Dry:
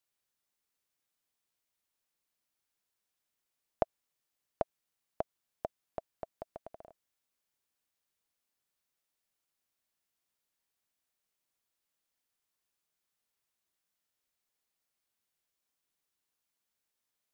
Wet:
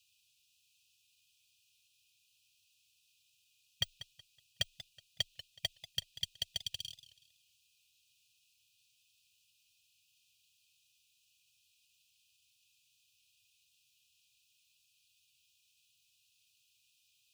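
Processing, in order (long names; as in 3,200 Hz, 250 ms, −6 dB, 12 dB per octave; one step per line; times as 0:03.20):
each half-wave held at its own peak
frequency shifter −22 Hz
linear-phase brick-wall band-stop 150–2,400 Hz
mid-hump overdrive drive 23 dB, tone 2,700 Hz, clips at −12.5 dBFS
dynamic equaliser 3,400 Hz, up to +4 dB, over −56 dBFS, Q 0.98
brickwall limiter −22 dBFS, peak gain reduction 7 dB
parametric band 90 Hz +4.5 dB 0.71 octaves
notch comb filter 340 Hz
feedback echo with a swinging delay time 186 ms, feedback 31%, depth 138 cents, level −15 dB
level +3.5 dB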